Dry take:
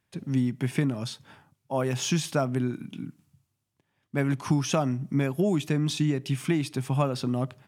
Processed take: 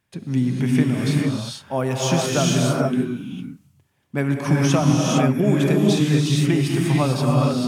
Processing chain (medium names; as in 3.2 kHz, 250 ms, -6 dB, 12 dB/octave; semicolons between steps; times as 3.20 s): gated-style reverb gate 480 ms rising, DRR -2.5 dB; trim +3.5 dB